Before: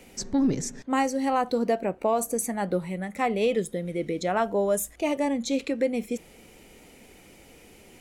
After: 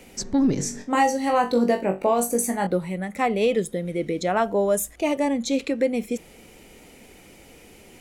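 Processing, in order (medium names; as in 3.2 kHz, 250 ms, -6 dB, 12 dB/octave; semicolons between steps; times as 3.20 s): 0.54–2.67 s: flutter echo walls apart 3.6 m, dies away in 0.24 s; trim +3 dB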